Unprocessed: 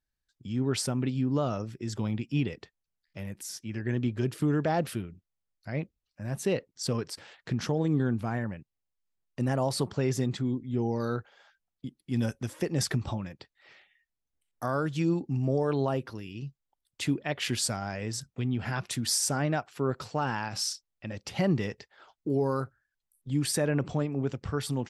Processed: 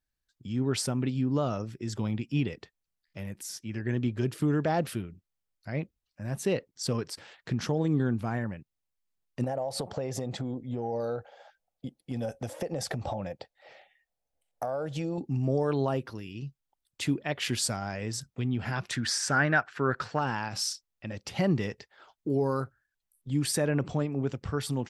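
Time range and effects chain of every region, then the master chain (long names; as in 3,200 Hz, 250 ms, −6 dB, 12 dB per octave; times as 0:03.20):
0:09.44–0:15.18: flat-topped bell 630 Hz +13.5 dB 1 octave + downward compressor 10 to 1, threshold −28 dBFS
0:18.91–0:20.19: low-pass filter 6,400 Hz + parametric band 1,600 Hz +14.5 dB 0.71 octaves
whole clip: no processing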